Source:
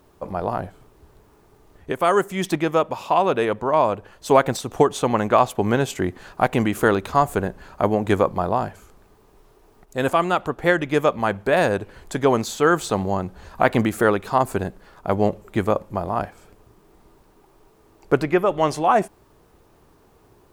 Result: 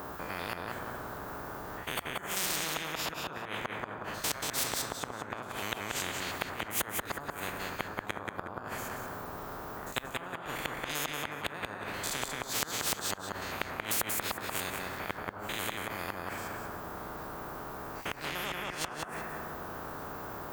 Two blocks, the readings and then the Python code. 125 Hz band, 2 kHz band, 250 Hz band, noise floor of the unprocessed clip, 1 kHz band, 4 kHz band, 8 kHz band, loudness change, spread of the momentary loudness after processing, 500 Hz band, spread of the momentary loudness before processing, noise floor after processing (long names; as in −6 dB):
−17.0 dB, −8.0 dB, −19.0 dB, −56 dBFS, −15.5 dB, −1.5 dB, +1.0 dB, −14.5 dB, 9 LU, −20.5 dB, 9 LU, −46 dBFS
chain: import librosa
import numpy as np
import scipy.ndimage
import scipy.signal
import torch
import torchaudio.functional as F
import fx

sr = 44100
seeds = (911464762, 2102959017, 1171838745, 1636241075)

y = fx.spec_steps(x, sr, hold_ms=100)
y = fx.low_shelf(y, sr, hz=350.0, db=-10.5)
y = fx.room_shoebox(y, sr, seeds[0], volume_m3=240.0, walls='mixed', distance_m=0.43)
y = fx.gate_flip(y, sr, shuts_db=-16.0, range_db=-30)
y = scipy.signal.sosfilt(scipy.signal.butter(2, 52.0, 'highpass', fs=sr, output='sos'), y)
y = fx.band_shelf(y, sr, hz=5100.0, db=-13.0, octaves=2.9)
y = fx.echo_feedback(y, sr, ms=183, feedback_pct=21, wet_db=-7.5)
y = fx.spectral_comp(y, sr, ratio=10.0)